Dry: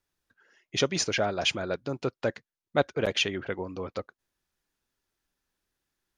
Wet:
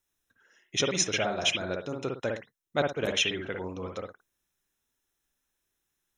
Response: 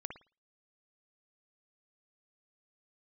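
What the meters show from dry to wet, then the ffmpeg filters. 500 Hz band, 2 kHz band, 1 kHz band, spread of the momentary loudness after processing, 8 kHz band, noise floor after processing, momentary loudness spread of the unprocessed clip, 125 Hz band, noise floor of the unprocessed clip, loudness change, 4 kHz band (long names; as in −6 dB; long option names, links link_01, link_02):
−2.0 dB, 0.0 dB, −1.5 dB, 12 LU, +3.5 dB, −81 dBFS, 9 LU, −2.0 dB, below −85 dBFS, −0.5 dB, +1.0 dB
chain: -filter_complex "[0:a]asuperstop=centerf=4600:order=12:qfactor=5.8,highshelf=frequency=3800:gain=10[link_01];[1:a]atrim=start_sample=2205,afade=type=out:start_time=0.16:duration=0.01,atrim=end_sample=7497[link_02];[link_01][link_02]afir=irnorm=-1:irlink=0"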